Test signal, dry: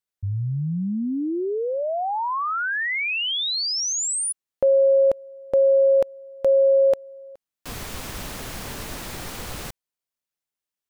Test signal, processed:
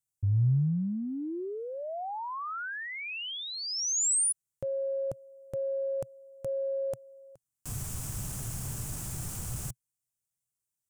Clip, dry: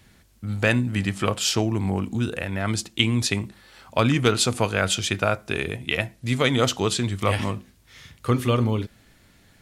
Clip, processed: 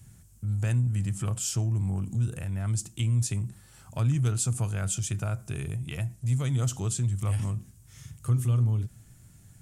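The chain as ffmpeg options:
-af "equalizer=f=125:t=o:w=1:g=12,equalizer=f=250:t=o:w=1:g=-6,equalizer=f=500:t=o:w=1:g=-9,equalizer=f=1k:t=o:w=1:g=-5,equalizer=f=2k:t=o:w=1:g=-9,equalizer=f=4k:t=o:w=1:g=-12,equalizer=f=8k:t=o:w=1:g=9,acompressor=threshold=-38dB:ratio=1.5:attack=0.32:release=36:detection=rms"

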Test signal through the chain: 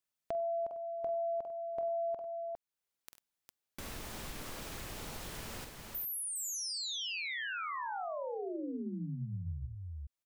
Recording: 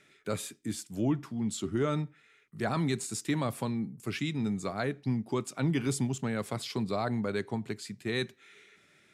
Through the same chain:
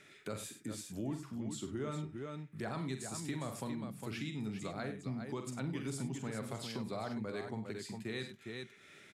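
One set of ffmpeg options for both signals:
-af "aecho=1:1:46|68|97|406:0.398|0.141|0.2|0.398,acompressor=threshold=-50dB:ratio=2,volume=2.5dB"

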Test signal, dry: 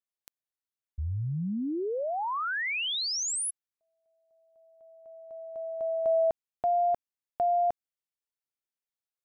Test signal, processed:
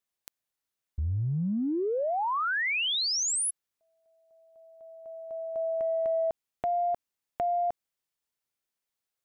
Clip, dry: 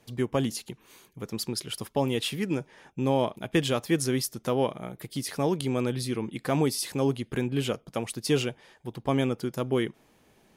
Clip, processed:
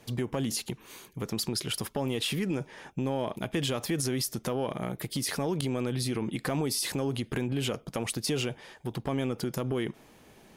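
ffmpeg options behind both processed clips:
-af "acompressor=threshold=-33dB:ratio=5:attack=2.8:release=39:knee=1:detection=rms,volume=6dB"

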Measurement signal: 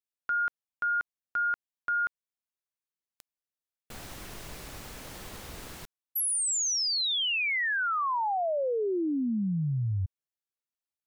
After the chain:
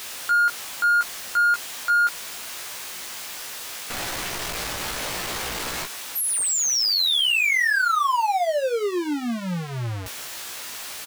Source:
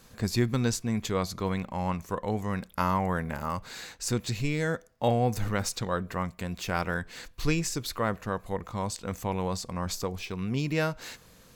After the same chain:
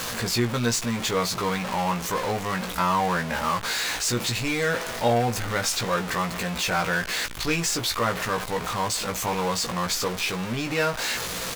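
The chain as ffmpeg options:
-filter_complex "[0:a]aeval=exprs='val(0)+0.5*0.0447*sgn(val(0))':c=same,asplit=2[a][b];[b]highpass=f=720:p=1,volume=10dB,asoftclip=type=tanh:threshold=-11dB[c];[a][c]amix=inputs=2:normalize=0,lowpass=f=6.8k:p=1,volume=-6dB,asplit=2[d][e];[e]adelay=17,volume=-5dB[f];[d][f]amix=inputs=2:normalize=0,volume=-1.5dB"

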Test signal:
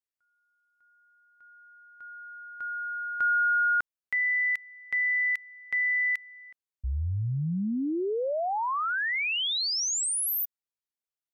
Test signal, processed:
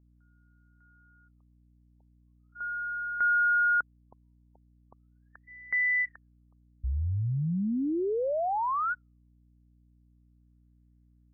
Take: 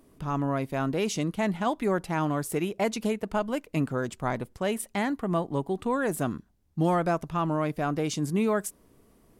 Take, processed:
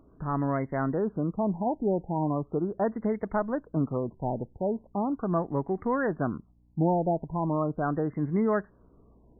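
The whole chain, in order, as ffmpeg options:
-af "aeval=exprs='val(0)+0.000891*(sin(2*PI*60*n/s)+sin(2*PI*2*60*n/s)/2+sin(2*PI*3*60*n/s)/3+sin(2*PI*4*60*n/s)/4+sin(2*PI*5*60*n/s)/5)':c=same,afftfilt=real='re*lt(b*sr/1024,920*pow(2200/920,0.5+0.5*sin(2*PI*0.39*pts/sr)))':imag='im*lt(b*sr/1024,920*pow(2200/920,0.5+0.5*sin(2*PI*0.39*pts/sr)))':win_size=1024:overlap=0.75"

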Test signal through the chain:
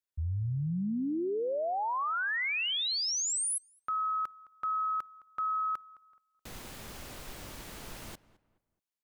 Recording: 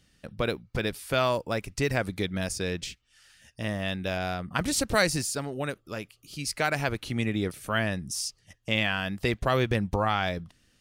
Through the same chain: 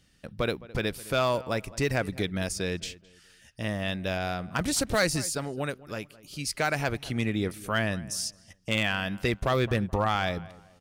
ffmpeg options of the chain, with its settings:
-filter_complex "[0:a]asplit=2[a][b];[b]adelay=213,lowpass=f=2.1k:p=1,volume=-19dB,asplit=2[c][d];[d]adelay=213,lowpass=f=2.1k:p=1,volume=0.34,asplit=2[e][f];[f]adelay=213,lowpass=f=2.1k:p=1,volume=0.34[g];[a][c][e][g]amix=inputs=4:normalize=0,asoftclip=type=hard:threshold=-17dB"

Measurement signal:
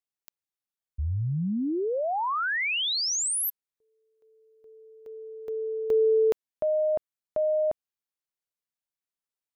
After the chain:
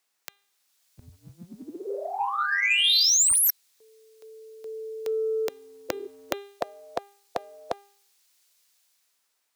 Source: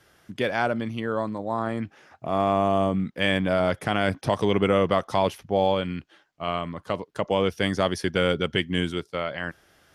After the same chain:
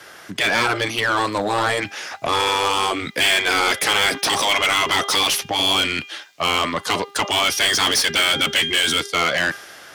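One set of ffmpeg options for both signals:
-filter_complex "[0:a]bandreject=f=401.4:t=h:w=4,bandreject=f=802.8:t=h:w=4,bandreject=f=1.2042k:t=h:w=4,bandreject=f=1.6056k:t=h:w=4,bandreject=f=2.007k:t=h:w=4,bandreject=f=2.4084k:t=h:w=4,bandreject=f=2.8098k:t=h:w=4,bandreject=f=3.2112k:t=h:w=4,bandreject=f=3.6126k:t=h:w=4,bandreject=f=4.014k:t=h:w=4,afftfilt=real='re*lt(hypot(re,im),0.178)':imag='im*lt(hypot(re,im),0.178)':win_size=1024:overlap=0.75,equalizer=f=3.1k:w=2.9:g=-2.5,acrossover=split=130|1200|2700[a][b][c][d];[d]dynaudnorm=f=160:g=9:m=11dB[e];[a][b][c][e]amix=inputs=4:normalize=0,asplit=2[f][g];[g]highpass=f=720:p=1,volume=26dB,asoftclip=type=tanh:threshold=-9dB[h];[f][h]amix=inputs=2:normalize=0,lowpass=f=7.8k:p=1,volume=-6dB"

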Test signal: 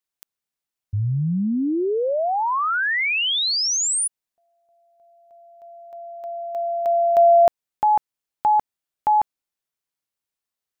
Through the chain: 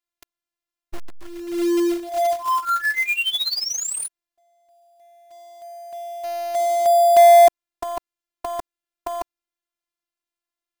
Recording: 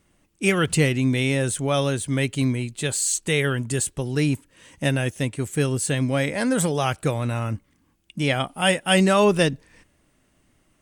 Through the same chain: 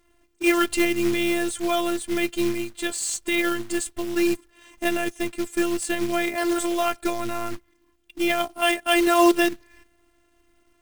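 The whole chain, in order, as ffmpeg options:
-af "highshelf=f=5.1k:g=-8.5,afftfilt=real='hypot(re,im)*cos(PI*b)':imag='0':win_size=512:overlap=0.75,acrusher=bits=3:mode=log:mix=0:aa=0.000001,volume=4.5dB"

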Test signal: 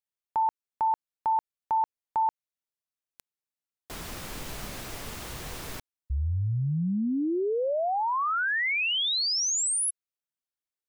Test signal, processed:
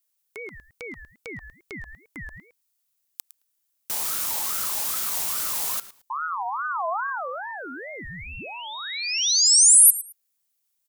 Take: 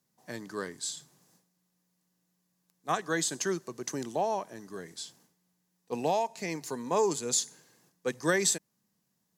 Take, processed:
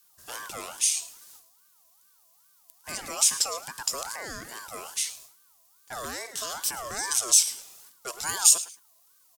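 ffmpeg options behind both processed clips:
-filter_complex "[0:a]asplit=2[a][b];[b]acompressor=threshold=-35dB:ratio=6:attack=0.42:release=121:detection=peak,volume=1dB[c];[a][c]amix=inputs=2:normalize=0,crystalizer=i=5:c=0,equalizer=f=190:t=o:w=0.58:g=3,asplit=2[d][e];[e]aecho=0:1:109|218:0.133|0.0267[f];[d][f]amix=inputs=2:normalize=0,acrossover=split=280|4700[g][h][i];[h]acompressor=threshold=-31dB:ratio=6:attack=0.95:release=76:knee=2.83:detection=peak[j];[g][j][i]amix=inputs=3:normalize=0,aeval=exprs='val(0)*sin(2*PI*1100*n/s+1100*0.25/2.4*sin(2*PI*2.4*n/s))':c=same,volume=-2dB"

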